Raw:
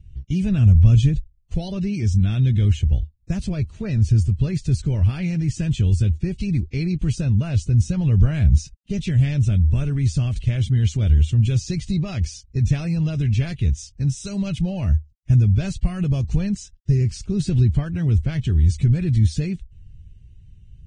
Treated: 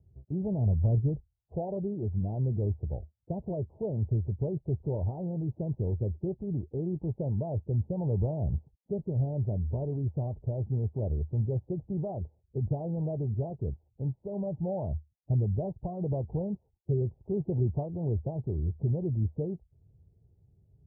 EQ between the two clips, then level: HPF 110 Hz 12 dB/oct; steep low-pass 890 Hz 72 dB/oct; resonant low shelf 330 Hz -8.5 dB, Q 1.5; 0.0 dB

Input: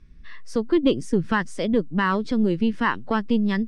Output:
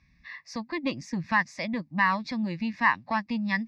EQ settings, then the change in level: HPF 80 Hz 12 dB/oct; bell 2300 Hz +11.5 dB 2.9 oct; fixed phaser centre 2100 Hz, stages 8; -5.5 dB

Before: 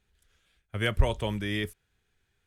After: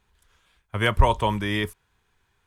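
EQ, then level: bell 1000 Hz +13 dB 0.55 oct; +4.5 dB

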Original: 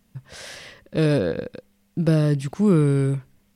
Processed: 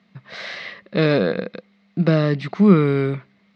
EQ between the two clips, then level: speaker cabinet 160–4900 Hz, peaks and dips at 190 Hz +10 dB, 400 Hz +4 dB, 680 Hz +7 dB, 1200 Hz +8 dB, 2100 Hz +9 dB, 4000 Hz +8 dB; bell 1900 Hz +3.5 dB 1.5 oct; 0.0 dB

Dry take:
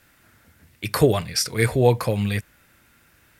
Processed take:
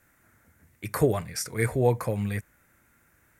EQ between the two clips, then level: band shelf 3700 Hz -9.5 dB 1.2 oct; -5.5 dB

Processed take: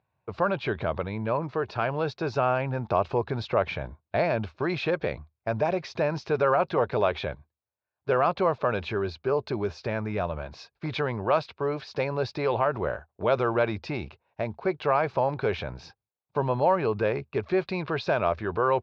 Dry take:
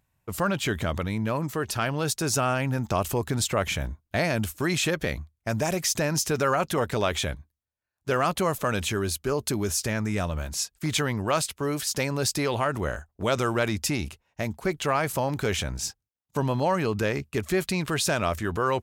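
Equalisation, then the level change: air absorption 300 m; speaker cabinet 140–4600 Hz, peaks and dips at 280 Hz -8 dB, 1300 Hz -4 dB, 1900 Hz -9 dB, 3100 Hz -9 dB; bell 190 Hz -8 dB 1.1 oct; +5.0 dB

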